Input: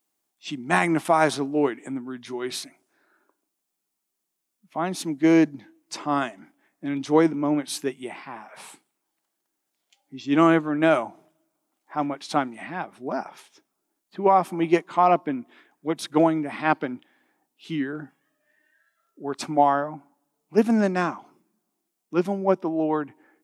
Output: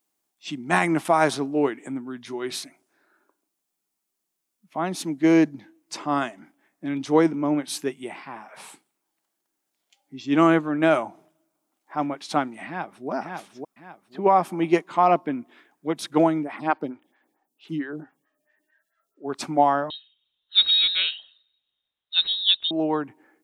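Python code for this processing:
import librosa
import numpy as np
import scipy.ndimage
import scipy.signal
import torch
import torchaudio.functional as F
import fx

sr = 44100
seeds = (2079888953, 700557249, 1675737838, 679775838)

y = fx.echo_throw(x, sr, start_s=12.66, length_s=0.43, ms=550, feedback_pct=35, wet_db=-4.0)
y = fx.stagger_phaser(y, sr, hz=4.5, at=(16.42, 19.28), fade=0.02)
y = fx.freq_invert(y, sr, carrier_hz=4000, at=(19.9, 22.71))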